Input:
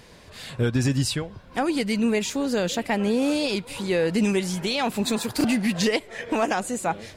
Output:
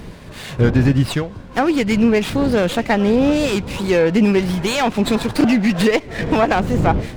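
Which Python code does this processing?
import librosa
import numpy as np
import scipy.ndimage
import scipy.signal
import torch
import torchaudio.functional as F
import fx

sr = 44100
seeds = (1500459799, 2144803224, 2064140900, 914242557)

y = fx.dmg_wind(x, sr, seeds[0], corner_hz=210.0, level_db=-35.0)
y = fx.env_lowpass_down(y, sr, base_hz=2700.0, full_db=-17.5)
y = fx.running_max(y, sr, window=5)
y = y * librosa.db_to_amplitude(8.0)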